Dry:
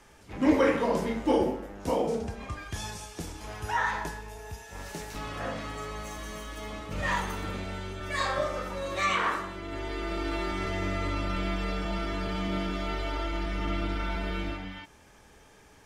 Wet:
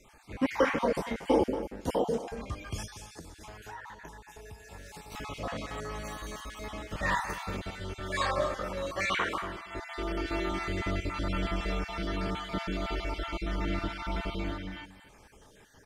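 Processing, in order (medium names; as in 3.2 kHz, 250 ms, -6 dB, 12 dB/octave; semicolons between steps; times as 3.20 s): random holes in the spectrogram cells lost 32%; 2.85–5.12 s: compression 5:1, threshold -44 dBFS, peak gain reduction 17.5 dB; delay 235 ms -13.5 dB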